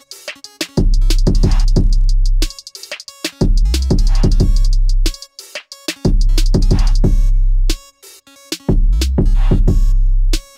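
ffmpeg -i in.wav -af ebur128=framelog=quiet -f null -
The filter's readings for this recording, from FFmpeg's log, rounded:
Integrated loudness:
  I:         -17.2 LUFS
  Threshold: -27.8 LUFS
Loudness range:
  LRA:         0.9 LU
  Threshold: -37.9 LUFS
  LRA low:   -18.4 LUFS
  LRA high:  -17.5 LUFS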